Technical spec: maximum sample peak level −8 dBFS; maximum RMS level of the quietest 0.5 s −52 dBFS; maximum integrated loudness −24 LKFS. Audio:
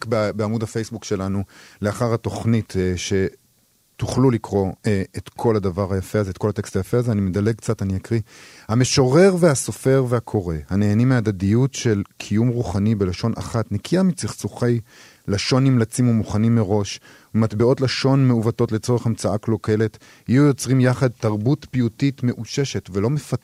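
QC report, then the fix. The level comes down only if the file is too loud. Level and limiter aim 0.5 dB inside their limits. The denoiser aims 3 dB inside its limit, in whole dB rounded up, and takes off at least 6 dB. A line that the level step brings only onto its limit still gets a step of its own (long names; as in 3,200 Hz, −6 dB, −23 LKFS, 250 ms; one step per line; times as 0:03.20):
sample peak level −4.0 dBFS: out of spec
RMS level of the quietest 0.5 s −61 dBFS: in spec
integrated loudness −20.5 LKFS: out of spec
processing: level −4 dB
brickwall limiter −8.5 dBFS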